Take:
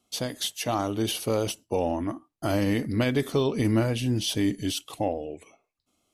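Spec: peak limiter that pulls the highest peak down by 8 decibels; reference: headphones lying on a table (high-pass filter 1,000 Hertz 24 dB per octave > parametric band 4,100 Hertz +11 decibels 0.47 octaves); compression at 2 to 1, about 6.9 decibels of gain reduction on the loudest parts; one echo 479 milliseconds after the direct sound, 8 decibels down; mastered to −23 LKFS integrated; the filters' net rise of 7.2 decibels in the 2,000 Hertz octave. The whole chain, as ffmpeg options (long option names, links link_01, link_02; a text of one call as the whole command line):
ffmpeg -i in.wav -af "equalizer=frequency=2000:width_type=o:gain=8,acompressor=threshold=-32dB:ratio=2,alimiter=limit=-24dB:level=0:latency=1,highpass=frequency=1000:width=0.5412,highpass=frequency=1000:width=1.3066,equalizer=frequency=4100:width_type=o:width=0.47:gain=11,aecho=1:1:479:0.398,volume=11.5dB" out.wav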